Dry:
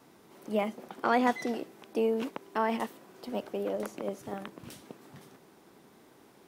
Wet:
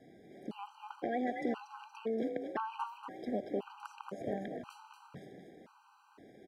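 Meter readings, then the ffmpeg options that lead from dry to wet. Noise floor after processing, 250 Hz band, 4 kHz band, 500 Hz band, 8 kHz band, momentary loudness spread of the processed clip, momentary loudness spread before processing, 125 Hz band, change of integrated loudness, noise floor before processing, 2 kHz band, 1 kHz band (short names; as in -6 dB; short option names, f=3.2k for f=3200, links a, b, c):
-65 dBFS, -5.5 dB, -10.0 dB, -7.0 dB, under -10 dB, 18 LU, 20 LU, -4.5 dB, -7.0 dB, -59 dBFS, -9.0 dB, -7.5 dB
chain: -filter_complex "[0:a]aemphasis=mode=reproduction:type=75fm,acompressor=threshold=-31dB:ratio=6,asplit=2[a][b];[b]asplit=6[c][d][e][f][g][h];[c]adelay=235,afreqshift=47,volume=-7dB[i];[d]adelay=470,afreqshift=94,volume=-13.4dB[j];[e]adelay=705,afreqshift=141,volume=-19.8dB[k];[f]adelay=940,afreqshift=188,volume=-26.1dB[l];[g]adelay=1175,afreqshift=235,volume=-32.5dB[m];[h]adelay=1410,afreqshift=282,volume=-38.9dB[n];[i][j][k][l][m][n]amix=inputs=6:normalize=0[o];[a][o]amix=inputs=2:normalize=0,afftfilt=real='re*gt(sin(2*PI*0.97*pts/sr)*(1-2*mod(floor(b*sr/1024/790),2)),0)':imag='im*gt(sin(2*PI*0.97*pts/sr)*(1-2*mod(floor(b*sr/1024/790),2)),0)':win_size=1024:overlap=0.75,volume=1dB"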